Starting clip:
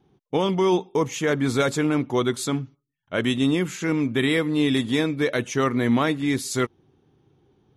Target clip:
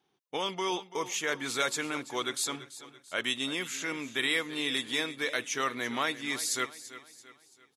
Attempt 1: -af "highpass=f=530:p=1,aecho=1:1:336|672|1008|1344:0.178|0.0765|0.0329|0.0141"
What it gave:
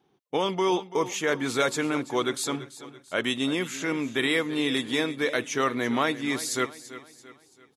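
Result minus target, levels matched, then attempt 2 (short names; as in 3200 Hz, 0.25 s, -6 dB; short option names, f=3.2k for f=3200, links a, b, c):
500 Hz band +4.5 dB
-af "highpass=f=1.9k:p=1,aecho=1:1:336|672|1008|1344:0.178|0.0765|0.0329|0.0141"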